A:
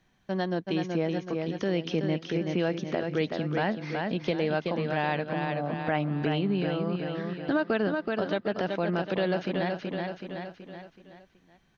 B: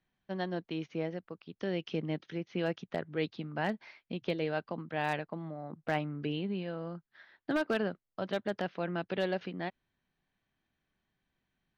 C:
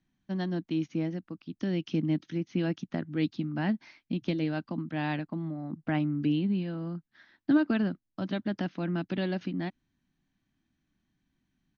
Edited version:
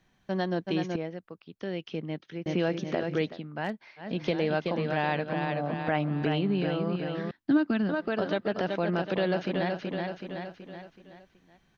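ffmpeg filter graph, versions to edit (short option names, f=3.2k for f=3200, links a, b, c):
-filter_complex "[1:a]asplit=2[a][b];[0:a]asplit=4[c][d][e][f];[c]atrim=end=0.962[g];[a]atrim=start=0.958:end=2.462[h];[d]atrim=start=2.458:end=3.41[i];[b]atrim=start=3.17:end=4.2[j];[e]atrim=start=3.96:end=7.312[k];[2:a]atrim=start=7.308:end=7.892[l];[f]atrim=start=7.888[m];[g][h]acrossfade=d=0.004:c1=hsin:c2=hsin[n];[n][i]acrossfade=d=0.004:c1=hsin:c2=hsin[o];[o][j]acrossfade=d=0.24:c1=tri:c2=tri[p];[p][k]acrossfade=d=0.24:c1=tri:c2=tri[q];[q][l]acrossfade=d=0.004:c1=hsin:c2=hsin[r];[r][m]acrossfade=d=0.004:c1=hsin:c2=hsin"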